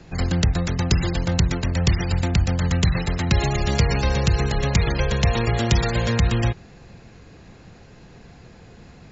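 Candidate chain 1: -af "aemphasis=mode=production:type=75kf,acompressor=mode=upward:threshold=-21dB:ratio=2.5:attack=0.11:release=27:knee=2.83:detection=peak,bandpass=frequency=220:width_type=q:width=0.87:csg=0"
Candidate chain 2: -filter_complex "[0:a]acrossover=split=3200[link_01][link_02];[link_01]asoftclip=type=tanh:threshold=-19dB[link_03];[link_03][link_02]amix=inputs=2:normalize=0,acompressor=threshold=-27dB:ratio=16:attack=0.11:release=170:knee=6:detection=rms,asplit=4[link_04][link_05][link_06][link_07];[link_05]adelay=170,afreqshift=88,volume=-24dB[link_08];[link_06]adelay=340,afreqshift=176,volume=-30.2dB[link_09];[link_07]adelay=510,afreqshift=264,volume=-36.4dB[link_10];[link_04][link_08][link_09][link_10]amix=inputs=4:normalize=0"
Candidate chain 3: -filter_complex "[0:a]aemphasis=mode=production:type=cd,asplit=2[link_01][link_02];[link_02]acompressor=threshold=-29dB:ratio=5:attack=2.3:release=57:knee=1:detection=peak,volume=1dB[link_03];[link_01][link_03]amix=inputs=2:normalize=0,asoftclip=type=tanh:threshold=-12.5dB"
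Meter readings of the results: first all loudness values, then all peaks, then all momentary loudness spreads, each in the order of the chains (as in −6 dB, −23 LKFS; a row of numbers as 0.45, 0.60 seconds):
−26.5, −34.0, −21.0 LKFS; −10.0, −25.0, −12.5 dBFS; 15, 14, 20 LU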